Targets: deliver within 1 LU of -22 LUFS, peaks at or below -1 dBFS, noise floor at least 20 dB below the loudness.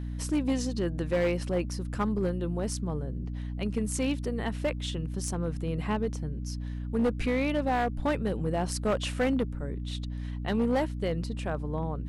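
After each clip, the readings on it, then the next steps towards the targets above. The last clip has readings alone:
clipped samples 1.2%; clipping level -21.0 dBFS; hum 60 Hz; highest harmonic 300 Hz; hum level -32 dBFS; loudness -30.5 LUFS; peak level -21.0 dBFS; loudness target -22.0 LUFS
-> clip repair -21 dBFS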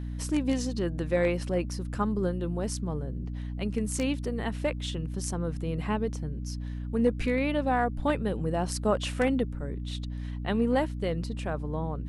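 clipped samples 0.0%; hum 60 Hz; highest harmonic 300 Hz; hum level -32 dBFS
-> de-hum 60 Hz, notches 5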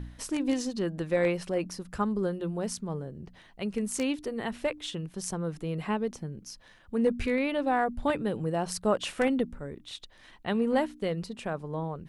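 hum not found; loudness -31.0 LUFS; peak level -14.0 dBFS; loudness target -22.0 LUFS
-> trim +9 dB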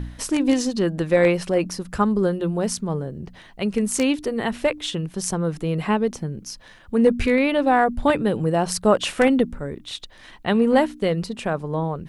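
loudness -22.0 LUFS; peak level -5.0 dBFS; noise floor -47 dBFS

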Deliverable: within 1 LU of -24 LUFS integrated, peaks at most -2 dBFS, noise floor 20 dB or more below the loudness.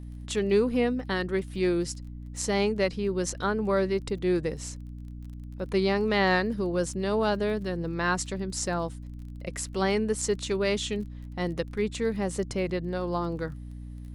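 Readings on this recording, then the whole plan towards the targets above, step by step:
tick rate 24 per s; hum 60 Hz; highest harmonic 300 Hz; hum level -37 dBFS; loudness -28.5 LUFS; peak level -12.5 dBFS; loudness target -24.0 LUFS
-> de-click; de-hum 60 Hz, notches 5; trim +4.5 dB

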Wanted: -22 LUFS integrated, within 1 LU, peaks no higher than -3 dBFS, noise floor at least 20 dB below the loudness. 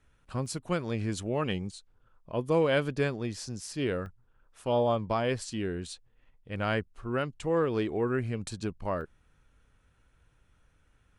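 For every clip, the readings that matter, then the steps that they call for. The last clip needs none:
dropouts 3; longest dropout 1.2 ms; loudness -31.5 LUFS; peak level -15.0 dBFS; loudness target -22.0 LUFS
-> interpolate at 0.46/4.06/9.01 s, 1.2 ms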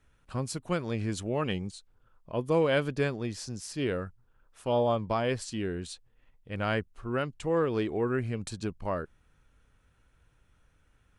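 dropouts 0; loudness -31.5 LUFS; peak level -15.0 dBFS; loudness target -22.0 LUFS
-> trim +9.5 dB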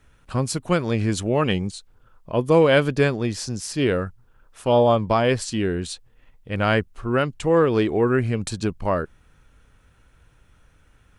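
loudness -22.0 LUFS; peak level -5.5 dBFS; noise floor -57 dBFS

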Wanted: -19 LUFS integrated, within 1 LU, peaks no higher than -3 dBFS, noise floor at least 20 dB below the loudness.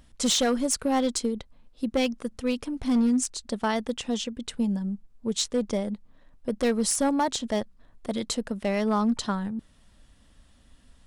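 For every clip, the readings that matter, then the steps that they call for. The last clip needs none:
clipped samples 1.1%; clipping level -18.0 dBFS; loudness -27.5 LUFS; peak level -18.0 dBFS; loudness target -19.0 LUFS
-> clip repair -18 dBFS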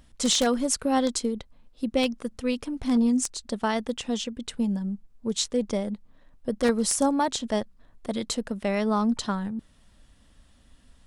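clipped samples 0.0%; loudness -27.0 LUFS; peak level -9.0 dBFS; loudness target -19.0 LUFS
-> trim +8 dB; peak limiter -3 dBFS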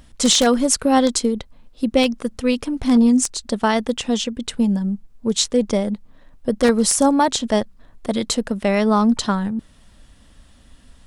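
loudness -19.0 LUFS; peak level -3.0 dBFS; noise floor -50 dBFS

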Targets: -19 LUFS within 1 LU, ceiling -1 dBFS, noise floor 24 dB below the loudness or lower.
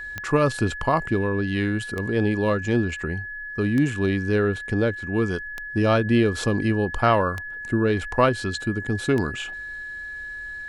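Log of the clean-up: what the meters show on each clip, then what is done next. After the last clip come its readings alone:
clicks found 6; steady tone 1.7 kHz; tone level -32 dBFS; loudness -24.0 LUFS; peak level -6.0 dBFS; loudness target -19.0 LUFS
-> de-click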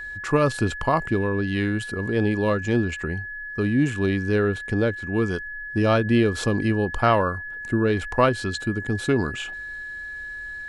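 clicks found 0; steady tone 1.7 kHz; tone level -32 dBFS
-> band-stop 1.7 kHz, Q 30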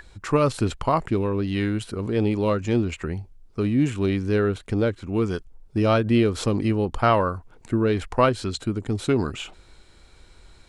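steady tone not found; loudness -24.0 LUFS; peak level -6.5 dBFS; loudness target -19.0 LUFS
-> trim +5 dB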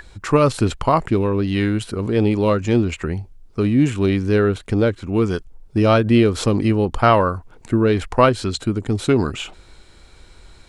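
loudness -19.0 LUFS; peak level -1.5 dBFS; noise floor -48 dBFS

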